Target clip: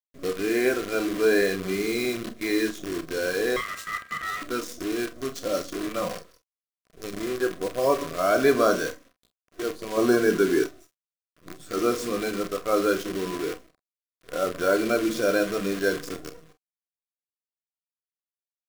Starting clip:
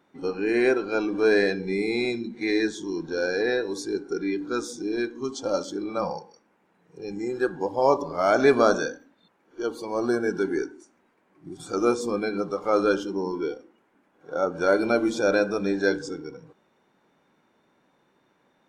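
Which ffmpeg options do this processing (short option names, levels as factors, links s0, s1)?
-filter_complex "[0:a]asettb=1/sr,asplit=3[s0][s1][s2];[s0]atrim=end=9.974[s3];[s1]atrim=start=9.97:end=10.64,asetpts=PTS-STARTPTS,afade=t=in:d=0.004:c=qsin,afade=t=out:st=0.666:d=0.004:c=qsin,acontrast=49[s4];[s2]atrim=start=10.636[s5];[s3][s4]acrossfade=d=0.004:c1=hsin:c2=qsin[s6];[s6][s5]acrossfade=d=0.004:c1=qsin:c2=hsin,acrusher=bits=6:dc=4:mix=0:aa=0.000001,asettb=1/sr,asplit=3[s7][s8][s9];[s7]atrim=end=3.564[s10];[s8]atrim=start=3.56:end=4.42,asetpts=PTS-STARTPTS,afade=t=in:d=0.004:c=qsin,afade=t=out:st=0.856:d=0.004:c=qsin,aeval=exprs='val(0)*sin(2*PI*1600*n/s)':c=same[s11];[s9]atrim=start=4.416[s12];[s10][s11]acrossfade=d=0.004:c1=hsin:c2=qsin[s13];[s13][s12]acrossfade=d=0.004:c1=qsin:c2=hsin,asuperstop=centerf=860:order=8:qfactor=4.3,aecho=1:1:32|45:0.251|0.188,volume=0.841"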